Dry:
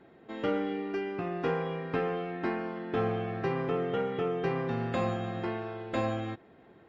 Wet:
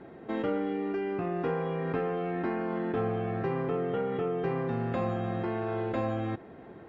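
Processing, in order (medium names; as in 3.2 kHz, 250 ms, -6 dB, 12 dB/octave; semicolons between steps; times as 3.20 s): in parallel at +1 dB: compressor with a negative ratio -40 dBFS, ratio -1; on the sum: low-pass 1.6 kHz 6 dB/octave; trim -1.5 dB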